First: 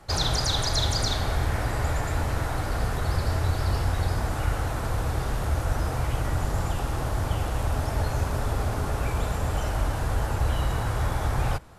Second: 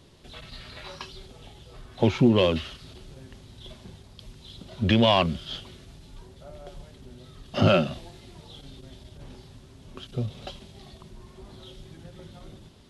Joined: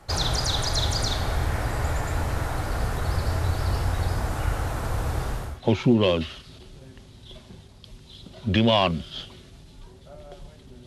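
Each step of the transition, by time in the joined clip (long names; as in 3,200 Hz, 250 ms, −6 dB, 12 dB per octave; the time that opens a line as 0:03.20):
first
0:05.38: continue with second from 0:01.73, crossfade 0.46 s equal-power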